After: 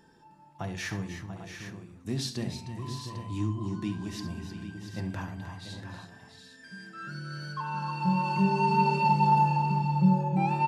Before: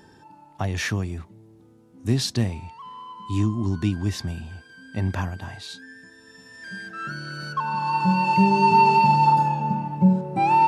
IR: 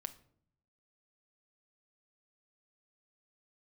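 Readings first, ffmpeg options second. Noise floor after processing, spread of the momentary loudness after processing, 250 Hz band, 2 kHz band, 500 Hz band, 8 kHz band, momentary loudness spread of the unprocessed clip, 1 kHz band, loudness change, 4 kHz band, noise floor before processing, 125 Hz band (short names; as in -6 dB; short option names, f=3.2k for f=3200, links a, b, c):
-55 dBFS, 18 LU, -5.0 dB, -7.5 dB, -6.0 dB, -7.0 dB, 21 LU, -7.5 dB, -6.5 dB, -7.0 dB, -52 dBFS, -4.5 dB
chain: -filter_complex "[0:a]aecho=1:1:68|308|309|689|754|799:0.251|0.15|0.299|0.316|0.178|0.299,flanger=delay=4.3:depth=2.6:regen=-58:speed=0.46:shape=triangular[a];[1:a]atrim=start_sample=2205[b];[a][b]afir=irnorm=-1:irlink=0,volume=-1.5dB"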